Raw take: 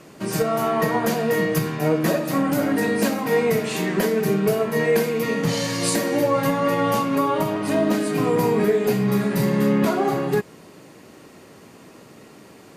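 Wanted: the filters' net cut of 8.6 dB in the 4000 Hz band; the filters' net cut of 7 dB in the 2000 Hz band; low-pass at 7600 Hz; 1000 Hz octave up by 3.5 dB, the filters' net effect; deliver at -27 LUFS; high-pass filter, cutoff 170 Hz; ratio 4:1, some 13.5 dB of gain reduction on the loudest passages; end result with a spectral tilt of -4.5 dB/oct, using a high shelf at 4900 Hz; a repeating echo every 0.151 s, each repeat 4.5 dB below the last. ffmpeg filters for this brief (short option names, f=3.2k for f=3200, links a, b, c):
-af "highpass=170,lowpass=7.6k,equalizer=f=1k:t=o:g=7,equalizer=f=2k:t=o:g=-8.5,equalizer=f=4k:t=o:g=-4,highshelf=f=4.9k:g=-9,acompressor=threshold=-32dB:ratio=4,aecho=1:1:151|302|453|604|755|906|1057|1208|1359:0.596|0.357|0.214|0.129|0.0772|0.0463|0.0278|0.0167|0.01,volume=4.5dB"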